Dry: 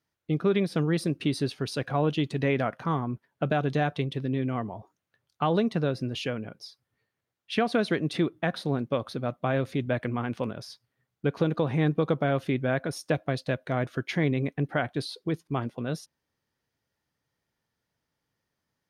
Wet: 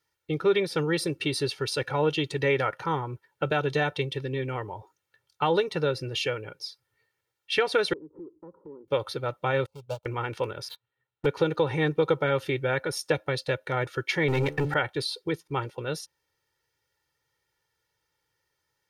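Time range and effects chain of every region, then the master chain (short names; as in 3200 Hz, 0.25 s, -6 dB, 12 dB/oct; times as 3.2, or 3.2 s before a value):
7.93–8.88 Chebyshev low-pass 1100 Hz, order 6 + fixed phaser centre 300 Hz, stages 4 + compressor 3:1, threshold -43 dBFS
9.66–10.06 median filter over 25 samples + fixed phaser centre 770 Hz, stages 4 + upward expander 2.5:1, over -41 dBFS
10.68–11.26 rippled Chebyshev low-pass 4100 Hz, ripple 3 dB + sample leveller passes 3
14.28–14.74 de-hum 72.98 Hz, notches 12 + sample leveller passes 2
whole clip: tilt shelf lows -3.5 dB, about 700 Hz; comb 2.2 ms, depth 87%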